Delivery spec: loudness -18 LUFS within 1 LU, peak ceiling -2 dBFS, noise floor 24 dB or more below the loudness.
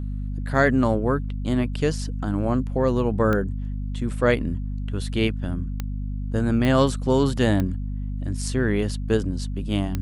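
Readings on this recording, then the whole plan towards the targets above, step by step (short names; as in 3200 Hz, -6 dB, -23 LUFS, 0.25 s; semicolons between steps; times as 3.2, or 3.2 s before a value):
clicks 5; hum 50 Hz; harmonics up to 250 Hz; hum level -26 dBFS; loudness -24.0 LUFS; peak -4.5 dBFS; loudness target -18.0 LUFS
-> de-click; de-hum 50 Hz, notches 5; gain +6 dB; limiter -2 dBFS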